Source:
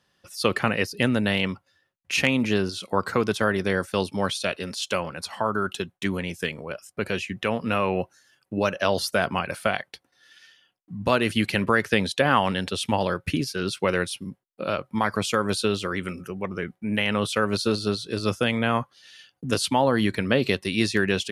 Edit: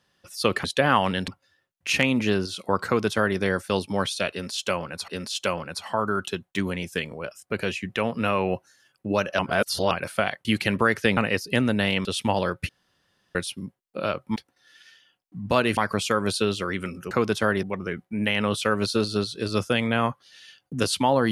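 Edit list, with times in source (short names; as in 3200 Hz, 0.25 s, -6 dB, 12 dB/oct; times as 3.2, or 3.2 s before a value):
0.64–1.52 swap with 12.05–12.69
3.1–3.62 copy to 16.34
4.55–5.32 loop, 2 plays
8.86–9.38 reverse
9.92–11.33 move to 15
13.33–13.99 room tone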